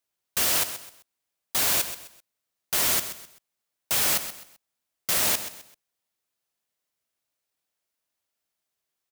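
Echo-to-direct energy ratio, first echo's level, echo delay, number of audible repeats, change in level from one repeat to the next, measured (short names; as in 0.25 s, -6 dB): -11.0 dB, -11.5 dB, 0.129 s, 3, -10.0 dB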